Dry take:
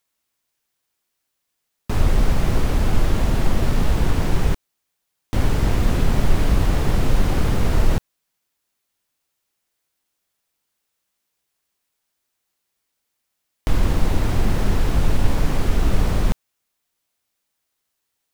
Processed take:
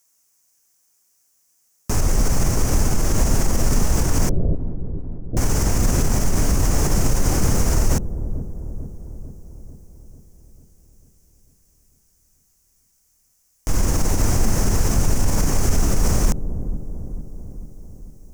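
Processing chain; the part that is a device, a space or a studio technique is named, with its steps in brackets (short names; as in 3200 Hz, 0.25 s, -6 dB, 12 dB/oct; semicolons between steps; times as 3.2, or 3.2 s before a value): over-bright horn tweeter (resonant high shelf 4800 Hz +8.5 dB, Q 3; limiter -13.5 dBFS, peak gain reduction 10.5 dB); 4.29–5.37 steep low-pass 670 Hz 96 dB/oct; dark delay 0.445 s, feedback 59%, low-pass 420 Hz, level -8.5 dB; gain +4 dB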